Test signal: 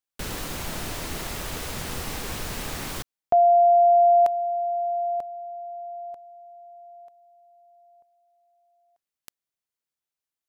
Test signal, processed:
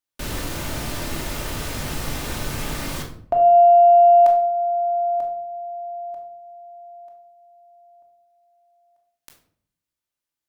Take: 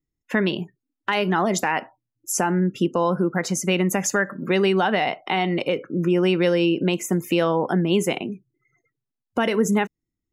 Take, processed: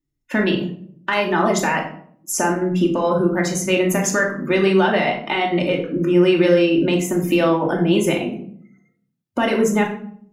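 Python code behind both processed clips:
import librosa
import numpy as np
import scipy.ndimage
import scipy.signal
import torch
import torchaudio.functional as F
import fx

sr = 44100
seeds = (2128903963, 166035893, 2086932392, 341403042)

y = fx.cheby_harmonics(x, sr, harmonics=(6,), levels_db=(-44,), full_scale_db=-8.5)
y = fx.room_shoebox(y, sr, seeds[0], volume_m3=850.0, walls='furnished', distance_m=2.6)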